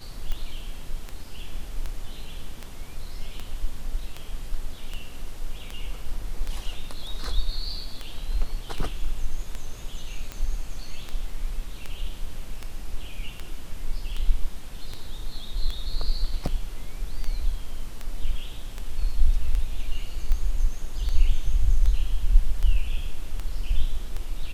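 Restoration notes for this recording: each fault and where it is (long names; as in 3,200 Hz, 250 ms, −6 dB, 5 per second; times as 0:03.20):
scratch tick 78 rpm −18 dBFS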